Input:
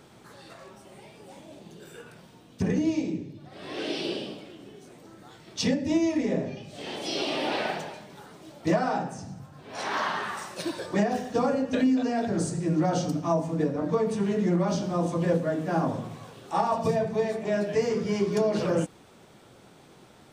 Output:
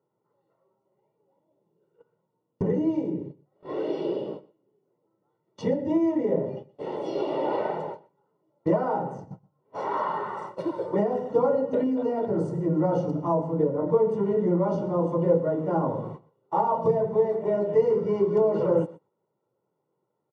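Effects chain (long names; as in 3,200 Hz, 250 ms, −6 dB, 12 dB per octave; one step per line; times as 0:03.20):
high-pass filter 130 Hz 24 dB per octave
noise gate −39 dBFS, range −30 dB
comb filter 2.1 ms, depth 55%
in parallel at +1 dB: downward compressor, threshold −36 dBFS, peak gain reduction 18 dB
on the sum: Savitzky-Golay smoothing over 65 samples
on a send: single-tap delay 124 ms −21.5 dB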